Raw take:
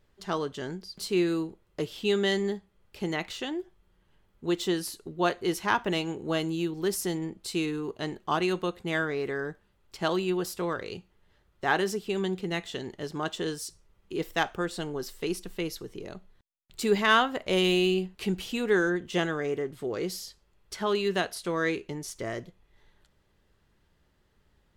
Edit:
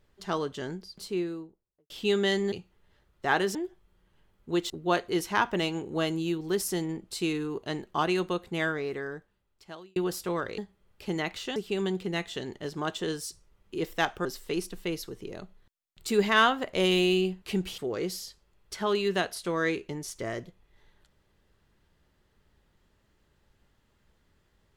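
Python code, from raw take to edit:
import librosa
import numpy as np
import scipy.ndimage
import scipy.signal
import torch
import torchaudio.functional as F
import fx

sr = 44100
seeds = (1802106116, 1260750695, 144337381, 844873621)

y = fx.studio_fade_out(x, sr, start_s=0.58, length_s=1.32)
y = fx.edit(y, sr, fx.swap(start_s=2.52, length_s=0.98, other_s=10.91, other_length_s=1.03),
    fx.cut(start_s=4.65, length_s=0.38),
    fx.fade_out_span(start_s=8.9, length_s=1.39),
    fx.cut(start_s=14.63, length_s=0.35),
    fx.cut(start_s=18.51, length_s=1.27), tone=tone)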